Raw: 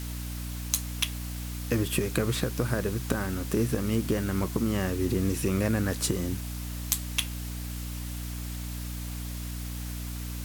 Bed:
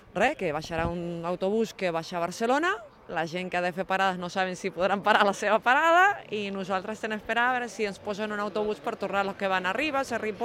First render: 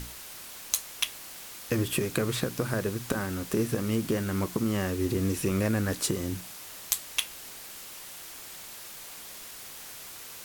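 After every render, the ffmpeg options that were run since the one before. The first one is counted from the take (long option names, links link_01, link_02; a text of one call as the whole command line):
ffmpeg -i in.wav -af "bandreject=frequency=60:width_type=h:width=6,bandreject=frequency=120:width_type=h:width=6,bandreject=frequency=180:width_type=h:width=6,bandreject=frequency=240:width_type=h:width=6,bandreject=frequency=300:width_type=h:width=6" out.wav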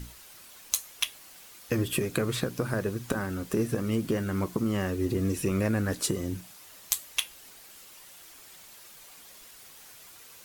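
ffmpeg -i in.wav -af "afftdn=noise_reduction=8:noise_floor=-44" out.wav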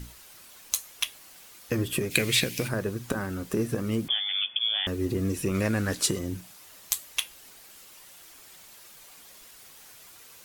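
ffmpeg -i in.wav -filter_complex "[0:a]asplit=3[link_01][link_02][link_03];[link_01]afade=type=out:start_time=2.1:duration=0.02[link_04];[link_02]highshelf=frequency=1700:width_type=q:width=3:gain=9.5,afade=type=in:start_time=2.1:duration=0.02,afade=type=out:start_time=2.67:duration=0.02[link_05];[link_03]afade=type=in:start_time=2.67:duration=0.02[link_06];[link_04][link_05][link_06]amix=inputs=3:normalize=0,asettb=1/sr,asplit=3[link_07][link_08][link_09];[link_07]atrim=end=4.084[link_10];[link_08]atrim=start=4.08:end=4.87,asetpts=PTS-STARTPTS,afade=type=in:duration=0.004:curve=qsin,afade=type=out:start_time=0.786:duration=0.004:curve=qsin,lowpass=frequency=3100:width_type=q:width=0.5098,lowpass=frequency=3100:width_type=q:width=0.6013,lowpass=frequency=3100:width_type=q:width=0.9,lowpass=frequency=3100:width_type=q:width=2.563,afreqshift=-3600[link_11];[link_09]atrim=start=4.866[link_12];[link_10][link_11]acrossfade=duration=0.004:curve1=hsin:curve2=qsin[link_13];[link_13][link_12]acrossfade=duration=0.004:curve1=qsin:curve2=hsin,asettb=1/sr,asplit=3[link_14][link_15][link_16];[link_14]atrim=end=5.544[link_17];[link_15]atrim=start=5.54:end=6.19,asetpts=PTS-STARTPTS,afade=type=in:duration=0.004:curve=qsin,afade=type=out:start_time=0.646:duration=0.004:curve=qsin,equalizer=frequency=4200:width=0.36:gain=5.5[link_18];[link_16]atrim=start=6.186[link_19];[link_17][link_18]acrossfade=duration=0.004:curve1=hsin:curve2=qsin[link_20];[link_20][link_19]acrossfade=duration=0.004:curve1=qsin:curve2=hsin" out.wav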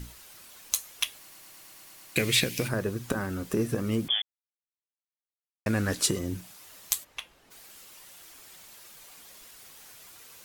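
ffmpeg -i in.wav -filter_complex "[0:a]asplit=3[link_01][link_02][link_03];[link_01]afade=type=out:start_time=7.03:duration=0.02[link_04];[link_02]lowpass=frequency=1100:poles=1,afade=type=in:start_time=7.03:duration=0.02,afade=type=out:start_time=7.5:duration=0.02[link_05];[link_03]afade=type=in:start_time=7.5:duration=0.02[link_06];[link_04][link_05][link_06]amix=inputs=3:normalize=0,asplit=12[link_07][link_08][link_09][link_10][link_11][link_12][link_13][link_14][link_15][link_16][link_17][link_18];[link_07]atrim=end=1.282[link_19];[link_08]atrim=start=1.168:end=1.282[link_20];[link_09]atrim=start=1.168:end=1.282[link_21];[link_10]atrim=start=1.168:end=1.282[link_22];[link_11]atrim=start=1.168:end=1.282[link_23];[link_12]atrim=start=1.168:end=1.282[link_24];[link_13]atrim=start=1.168:end=1.282[link_25];[link_14]atrim=start=1.168:end=1.282[link_26];[link_15]atrim=start=1.168:end=1.282[link_27];[link_16]atrim=start=2.158:end=4.22,asetpts=PTS-STARTPTS,afade=type=out:start_time=2.058:duration=0.004:curve=hsin[link_28];[link_17]atrim=start=4.22:end=5.66,asetpts=PTS-STARTPTS,volume=0[link_29];[link_18]atrim=start=5.66,asetpts=PTS-STARTPTS,afade=type=in:duration=0.004:curve=hsin[link_30];[link_19][link_20]acrossfade=duration=0.004:curve1=hsin:curve2=hsin[link_31];[link_31][link_21]acrossfade=duration=0.004:curve1=hsin:curve2=hsin[link_32];[link_32][link_22]acrossfade=duration=0.004:curve1=hsin:curve2=hsin[link_33];[link_33][link_23]acrossfade=duration=0.004:curve1=hsin:curve2=hsin[link_34];[link_34][link_24]acrossfade=duration=0.004:curve1=hsin:curve2=hsin[link_35];[link_35][link_25]acrossfade=duration=0.004:curve1=hsin:curve2=hsin[link_36];[link_36][link_26]acrossfade=duration=0.004:curve1=hsin:curve2=hsin[link_37];[link_37][link_27]acrossfade=duration=0.004:curve1=hsin:curve2=hsin[link_38];[link_28][link_29][link_30]concat=n=3:v=0:a=1[link_39];[link_38][link_39]acrossfade=duration=0.004:curve1=hsin:curve2=hsin" out.wav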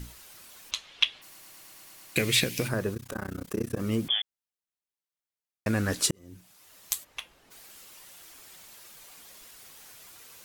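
ffmpeg -i in.wav -filter_complex "[0:a]asplit=3[link_01][link_02][link_03];[link_01]afade=type=out:start_time=0.7:duration=0.02[link_04];[link_02]lowpass=frequency=3400:width_type=q:width=2.3,afade=type=in:start_time=0.7:duration=0.02,afade=type=out:start_time=1.21:duration=0.02[link_05];[link_03]afade=type=in:start_time=1.21:duration=0.02[link_06];[link_04][link_05][link_06]amix=inputs=3:normalize=0,asplit=3[link_07][link_08][link_09];[link_07]afade=type=out:start_time=2.94:duration=0.02[link_10];[link_08]tremolo=f=31:d=1,afade=type=in:start_time=2.94:duration=0.02,afade=type=out:start_time=3.78:duration=0.02[link_11];[link_09]afade=type=in:start_time=3.78:duration=0.02[link_12];[link_10][link_11][link_12]amix=inputs=3:normalize=0,asplit=2[link_13][link_14];[link_13]atrim=end=6.11,asetpts=PTS-STARTPTS,afade=type=out:start_time=6.106:duration=0.004:curve=hsin[link_15];[link_14]atrim=start=6.11,asetpts=PTS-STARTPTS,afade=type=in:duration=1.08[link_16];[link_15][link_16]concat=n=2:v=0:a=1" out.wav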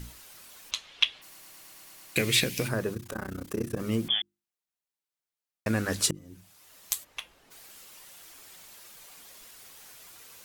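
ffmpeg -i in.wav -af "bandreject=frequency=50:width_type=h:width=6,bandreject=frequency=100:width_type=h:width=6,bandreject=frequency=150:width_type=h:width=6,bandreject=frequency=200:width_type=h:width=6,bandreject=frequency=250:width_type=h:width=6,bandreject=frequency=300:width_type=h:width=6,bandreject=frequency=350:width_type=h:width=6" out.wav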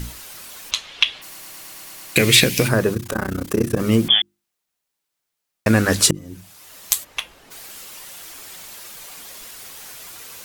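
ffmpeg -i in.wav -af "alimiter=level_in=12dB:limit=-1dB:release=50:level=0:latency=1" out.wav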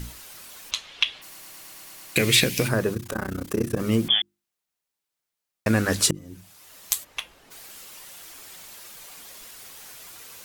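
ffmpeg -i in.wav -af "volume=-5.5dB" out.wav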